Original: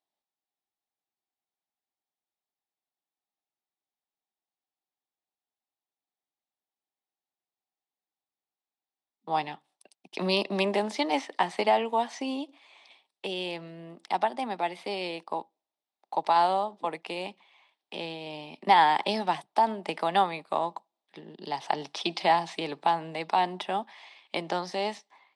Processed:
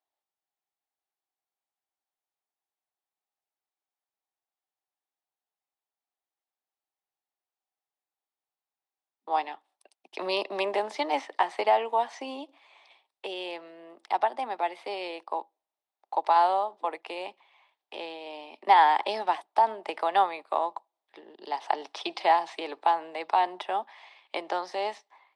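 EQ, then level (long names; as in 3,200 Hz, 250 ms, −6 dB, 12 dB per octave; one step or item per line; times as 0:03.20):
high-pass filter 290 Hz 24 dB per octave
parametric band 980 Hz +8 dB 2.9 octaves
−6.5 dB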